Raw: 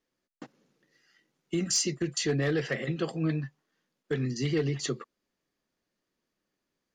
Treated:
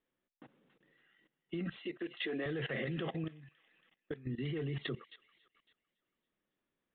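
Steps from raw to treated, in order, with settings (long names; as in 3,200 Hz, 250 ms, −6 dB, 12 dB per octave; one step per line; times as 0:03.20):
in parallel at +0.5 dB: brickwall limiter −26.5 dBFS, peak gain reduction 9 dB
0:01.78–0:02.46: on the sum: high-pass filter 260 Hz 24 dB per octave
0:03.24–0:04.27: downward compressor 4 to 1, threshold −35 dBFS, peak gain reduction 12 dB
on a send: delay with a high-pass on its return 279 ms, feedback 43%, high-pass 2,000 Hz, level −12 dB
on the sum: downsampling to 8,000 Hz
output level in coarse steps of 17 dB
level −3 dB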